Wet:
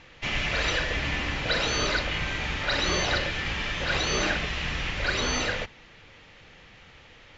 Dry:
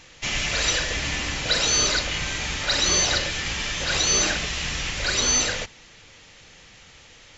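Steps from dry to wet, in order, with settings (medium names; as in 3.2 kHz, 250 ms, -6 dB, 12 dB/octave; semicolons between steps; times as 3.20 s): low-pass 2.9 kHz 12 dB/octave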